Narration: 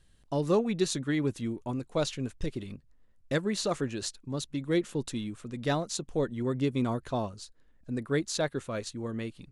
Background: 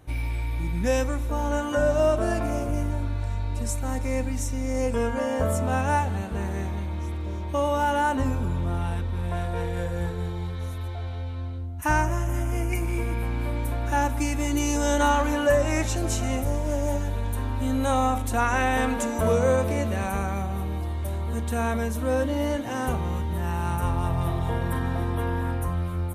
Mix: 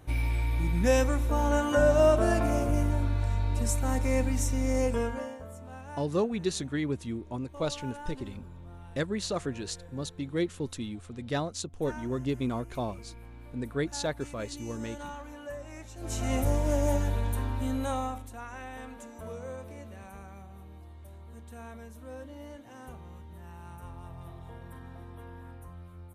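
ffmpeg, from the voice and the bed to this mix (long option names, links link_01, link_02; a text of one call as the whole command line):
ffmpeg -i stem1.wav -i stem2.wav -filter_complex "[0:a]adelay=5650,volume=-2dB[link_01];[1:a]volume=19.5dB,afade=type=out:start_time=4.7:duration=0.69:silence=0.1,afade=type=in:start_time=15.96:duration=0.46:silence=0.105925,afade=type=out:start_time=17.09:duration=1.24:silence=0.11885[link_02];[link_01][link_02]amix=inputs=2:normalize=0" out.wav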